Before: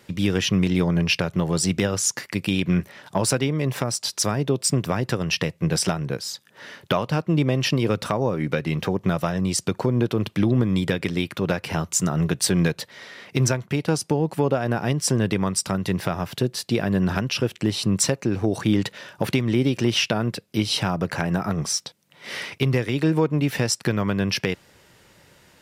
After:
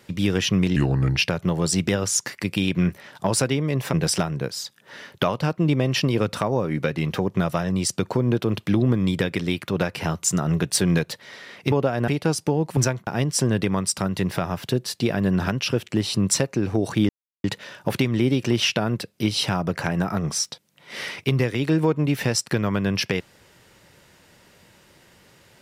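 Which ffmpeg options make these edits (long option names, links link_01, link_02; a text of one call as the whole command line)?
ffmpeg -i in.wav -filter_complex "[0:a]asplit=9[link_01][link_02][link_03][link_04][link_05][link_06][link_07][link_08][link_09];[link_01]atrim=end=0.764[link_10];[link_02]atrim=start=0.76:end=1.08,asetpts=PTS-STARTPTS,asetrate=34398,aresample=44100,atrim=end_sample=18092,asetpts=PTS-STARTPTS[link_11];[link_03]atrim=start=1.076:end=3.842[link_12];[link_04]atrim=start=5.618:end=13.412[link_13];[link_05]atrim=start=14.398:end=14.762[link_14];[link_06]atrim=start=13.708:end=14.402[link_15];[link_07]atrim=start=13.408:end=13.712[link_16];[link_08]atrim=start=14.758:end=18.78,asetpts=PTS-STARTPTS,afade=type=out:start_time=4.018:duration=0.004:curve=hsin,apad=pad_dur=0.35[link_17];[link_09]atrim=start=18.78,asetpts=PTS-STARTPTS,afade=type=in:duration=0.004:curve=hsin[link_18];[link_10][link_11]acrossfade=duration=0.004:curve1=hsin:curve2=hsin[link_19];[link_19][link_12]acrossfade=duration=0.004:curve1=hsin:curve2=hsin[link_20];[link_20][link_13]acrossfade=duration=0.004:curve1=hsin:curve2=hsin[link_21];[link_21][link_14]acrossfade=duration=0.004:curve1=hsin:curve2=hsin[link_22];[link_22][link_15]acrossfade=duration=0.004:curve1=hsin:curve2=hsin[link_23];[link_23][link_16]acrossfade=duration=0.004:curve1=hsin:curve2=hsin[link_24];[link_17][link_18]concat=n=2:v=0:a=1[link_25];[link_24][link_25]acrossfade=duration=0.004:curve1=hsin:curve2=hsin" out.wav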